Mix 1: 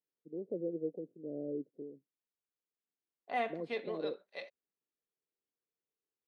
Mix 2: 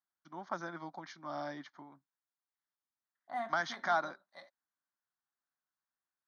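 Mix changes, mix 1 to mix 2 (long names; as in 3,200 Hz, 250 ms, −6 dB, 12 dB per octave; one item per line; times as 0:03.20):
first voice: remove Butterworth low-pass 500 Hz 48 dB per octave
master: add phaser with its sweep stopped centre 1,100 Hz, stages 4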